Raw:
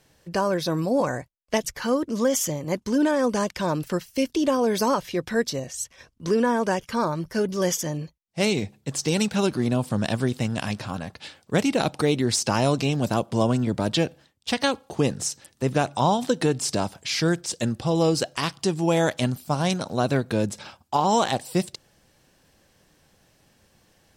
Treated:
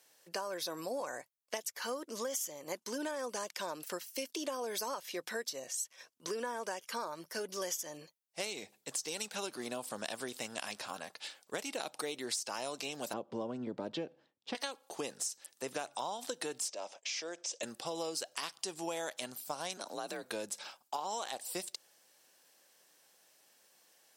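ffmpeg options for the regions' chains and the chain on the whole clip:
-filter_complex "[0:a]asettb=1/sr,asplit=3[a][b][c];[a]atrim=end=13.134[d];[b]atrim=start=13.13:end=14.55,asetpts=PTS-STARTPTS,afade=t=in:d=0.004:c=qsin,afade=t=out:st=1.416:d=0.004:c=qsin,lowpass=3.9k,tiltshelf=f=660:g=9.5,bandreject=f=680:w=13[e];[c]atrim=start=14.546[f];[d][e]acrossfade=d=0.004:c1=hsin:c2=qsin[g];[g][f]acrossfade=d=0.004:c1=qsin:c2=hsin,asettb=1/sr,asplit=3[h][i][j];[h]atrim=end=16.684[k];[i]atrim=start=16.68:end=17.63,asetpts=PTS-STARTPTS,afade=t=in:d=0.004:c=qsin,afade=t=out:st=0.946:d=0.004:c=qsin,agate=range=-33dB:threshold=-45dB:ratio=3:release=100:detection=peak,acompressor=threshold=-31dB:ratio=2:attack=3.2:release=140:knee=1:detection=peak,highpass=290,equalizer=f=570:t=q:w=4:g=9,equalizer=f=1.5k:t=q:w=4:g=-5,equalizer=f=2.5k:t=q:w=4:g=3,equalizer=f=4.3k:t=q:w=4:g=-6,equalizer=f=6.2k:t=q:w=4:g=4,lowpass=f=6.7k:w=0.5412,lowpass=f=6.7k:w=1.3066[l];[j]atrim=start=17.626[m];[k][l]acrossfade=d=0.004:c1=hsin:c2=qsin[n];[n][m]acrossfade=d=0.004:c1=qsin:c2=hsin,asettb=1/sr,asplit=3[o][p][q];[o]atrim=end=19.774[r];[p]atrim=start=19.77:end=20.23,asetpts=PTS-STARTPTS,afade=t=in:d=0.004:c=qsin,afade=t=out:st=0.456:d=0.004:c=qsin,acompressor=threshold=-24dB:ratio=5:attack=3.2:release=140:knee=1:detection=peak,afreqshift=47[s];[q]atrim=start=20.226[t];[r][s]acrossfade=d=0.004:c1=hsin:c2=qsin[u];[u][t]acrossfade=d=0.004:c1=qsin:c2=hsin,highpass=480,highshelf=f=5.8k:g=10.5,acompressor=threshold=-28dB:ratio=6,volume=-7dB"

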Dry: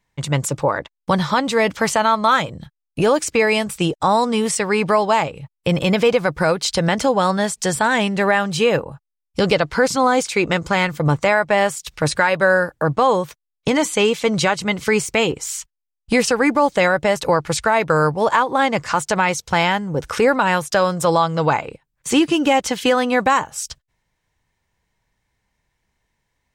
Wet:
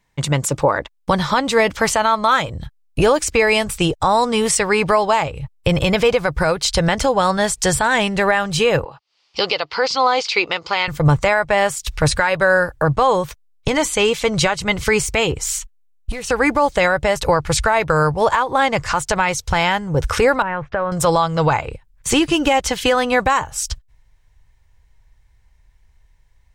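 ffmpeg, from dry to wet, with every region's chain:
-filter_complex "[0:a]asettb=1/sr,asplit=3[a][b][c];[a]atrim=end=8.844[d];[b]atrim=start=8.84:end=10.88,asetpts=PTS-STARTPTS,afade=t=in:d=0.004:c=qsin,afade=t=out:st=2.036:d=0.004:c=qsin,acompressor=mode=upward:threshold=-23dB:ratio=2.5:attack=3.2:release=140:knee=2.83:detection=peak,highpass=450,equalizer=f=600:t=q:w=4:g=-5,equalizer=f=1.6k:t=q:w=4:g=-7,equalizer=f=2.9k:t=q:w=4:g=4,equalizer=f=4.7k:t=q:w=4:g=8,lowpass=f=5.1k:w=0.5412,lowpass=f=5.1k:w=1.3066[e];[c]atrim=start=10.876[f];[d][e]acrossfade=d=0.004:c1=hsin:c2=qsin[g];[g][f]acrossfade=d=0.004:c1=qsin:c2=hsin,asettb=1/sr,asplit=3[h][i][j];[h]atrim=end=15.584[k];[i]atrim=start=15.58:end=16.3,asetpts=PTS-STARTPTS,afade=t=in:d=0.004:c=qsin,afade=t=out:st=0.716:d=0.004:c=qsin,bandreject=f=5k:w=8.3,acompressor=threshold=-28dB:ratio=6:attack=3.2:release=140:knee=1:detection=peak,volume=25dB,asoftclip=hard,volume=-25dB[l];[j]atrim=start=16.296[m];[k][l]acrossfade=d=0.004:c1=hsin:c2=qsin[n];[n][m]acrossfade=d=0.004:c1=qsin:c2=hsin,asettb=1/sr,asplit=3[o][p][q];[o]atrim=end=20.424[r];[p]atrim=start=20.42:end=20.92,asetpts=PTS-STARTPTS,afade=t=in:d=0.004:c=qsin,afade=t=out:st=0.496:d=0.004:c=qsin,lowpass=f=2.1k:w=0.5412,lowpass=f=2.1k:w=1.3066,acompressor=threshold=-22dB:ratio=3:attack=3.2:release=140:knee=1:detection=peak[s];[q]atrim=start=20.916[t];[r][s]acrossfade=d=0.004:c1=hsin:c2=qsin[u];[u][t]acrossfade=d=0.004:c1=qsin:c2=hsin,asubboost=boost=11:cutoff=65,alimiter=limit=-10dB:level=0:latency=1:release=296,volume=4.5dB"

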